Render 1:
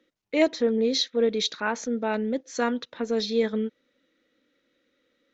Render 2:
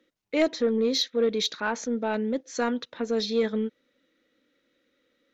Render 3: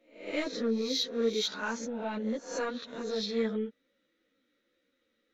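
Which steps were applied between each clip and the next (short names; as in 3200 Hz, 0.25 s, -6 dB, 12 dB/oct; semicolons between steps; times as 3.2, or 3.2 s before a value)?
soft clip -13.5 dBFS, distortion -20 dB
spectral swells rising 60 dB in 0.50 s; ensemble effect; gain -4 dB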